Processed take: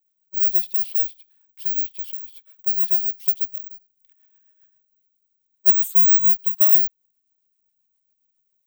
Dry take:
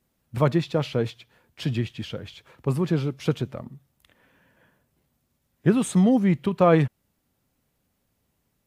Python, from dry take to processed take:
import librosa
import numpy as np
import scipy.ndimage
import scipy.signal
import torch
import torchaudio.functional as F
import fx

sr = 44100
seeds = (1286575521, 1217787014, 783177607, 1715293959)

y = fx.rotary(x, sr, hz=7.5)
y = (np.kron(scipy.signal.resample_poly(y, 1, 2), np.eye(2)[0]) * 2)[:len(y)]
y = librosa.effects.preemphasis(y, coef=0.9, zi=[0.0])
y = y * 10.0 ** (-1.0 / 20.0)